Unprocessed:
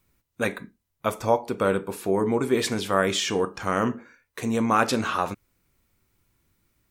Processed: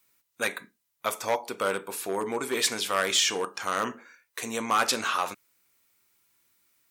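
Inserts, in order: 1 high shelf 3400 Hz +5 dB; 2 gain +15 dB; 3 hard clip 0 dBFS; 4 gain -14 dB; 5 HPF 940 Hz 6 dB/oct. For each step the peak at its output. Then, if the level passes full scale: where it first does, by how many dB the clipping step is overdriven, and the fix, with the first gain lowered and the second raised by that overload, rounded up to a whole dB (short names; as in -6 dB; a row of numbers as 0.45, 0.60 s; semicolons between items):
-5.0, +10.0, 0.0, -14.0, -11.5 dBFS; step 2, 10.0 dB; step 2 +5 dB, step 4 -4 dB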